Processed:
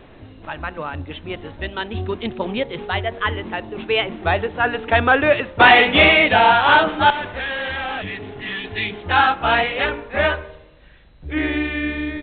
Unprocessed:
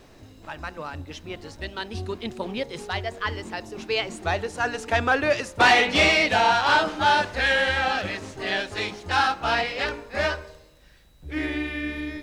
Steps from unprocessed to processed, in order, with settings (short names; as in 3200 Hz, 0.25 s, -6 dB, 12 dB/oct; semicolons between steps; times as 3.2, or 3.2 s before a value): 8.04–8.94 spectral repair 310–1700 Hz after; 7.1–8.64 tube stage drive 30 dB, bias 0.4; downsampling 8000 Hz; gain +6.5 dB